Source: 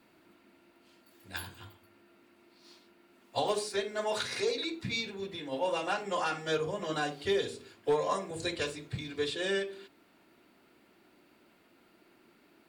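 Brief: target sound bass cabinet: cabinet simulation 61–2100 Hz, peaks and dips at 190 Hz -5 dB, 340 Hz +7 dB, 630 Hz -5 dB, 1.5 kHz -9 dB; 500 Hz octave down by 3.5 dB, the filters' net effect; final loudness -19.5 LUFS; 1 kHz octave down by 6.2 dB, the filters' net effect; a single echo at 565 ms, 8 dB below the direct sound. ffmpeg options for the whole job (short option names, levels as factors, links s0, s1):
-af "highpass=f=61:w=0.5412,highpass=f=61:w=1.3066,equalizer=f=190:t=q:w=4:g=-5,equalizer=f=340:t=q:w=4:g=7,equalizer=f=630:t=q:w=4:g=-5,equalizer=f=1500:t=q:w=4:g=-9,lowpass=f=2100:w=0.5412,lowpass=f=2100:w=1.3066,equalizer=f=500:t=o:g=-4.5,equalizer=f=1000:t=o:g=-4,aecho=1:1:565:0.398,volume=7.94"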